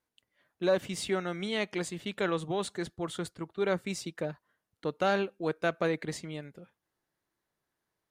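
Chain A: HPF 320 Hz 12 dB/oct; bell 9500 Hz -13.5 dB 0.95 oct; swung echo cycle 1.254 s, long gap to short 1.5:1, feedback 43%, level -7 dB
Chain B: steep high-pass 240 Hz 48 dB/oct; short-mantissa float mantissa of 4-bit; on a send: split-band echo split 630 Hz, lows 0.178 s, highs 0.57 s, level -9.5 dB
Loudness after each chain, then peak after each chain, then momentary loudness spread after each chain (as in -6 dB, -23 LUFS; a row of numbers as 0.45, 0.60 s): -34.0, -33.0 LUFS; -16.0, -16.0 dBFS; 10, 17 LU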